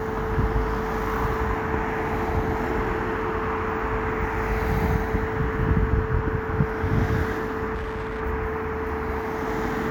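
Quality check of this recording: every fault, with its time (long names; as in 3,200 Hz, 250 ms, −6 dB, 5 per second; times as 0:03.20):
whistle 440 Hz −29 dBFS
0:07.74–0:08.21: clipping −26 dBFS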